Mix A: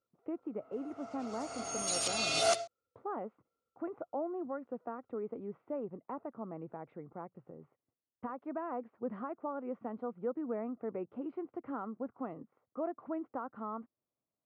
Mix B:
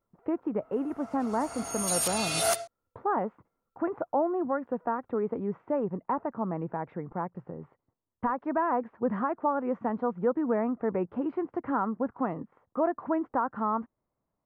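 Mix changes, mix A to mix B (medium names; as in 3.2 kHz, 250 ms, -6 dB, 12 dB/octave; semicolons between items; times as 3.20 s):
speech +9.0 dB; master: remove cabinet simulation 120–7300 Hz, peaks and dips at 180 Hz -5 dB, 940 Hz -7 dB, 1.7 kHz -8 dB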